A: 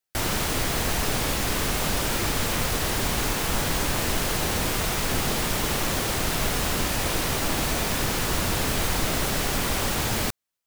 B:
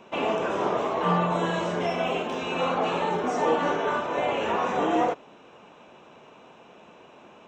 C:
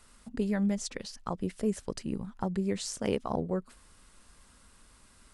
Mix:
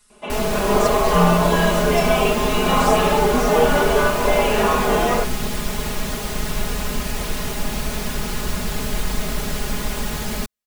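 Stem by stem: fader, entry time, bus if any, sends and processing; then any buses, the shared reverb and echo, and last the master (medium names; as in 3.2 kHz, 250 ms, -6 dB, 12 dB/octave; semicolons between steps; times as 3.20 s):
-5.0 dB, 0.15 s, no send, bass shelf 210 Hz +7.5 dB
-4.5 dB, 0.10 s, no send, band-stop 900 Hz, Q 20; level rider gain up to 11.5 dB
-6.5 dB, 0.00 s, no send, treble shelf 3 kHz +10 dB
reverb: none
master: comb 4.8 ms, depth 89%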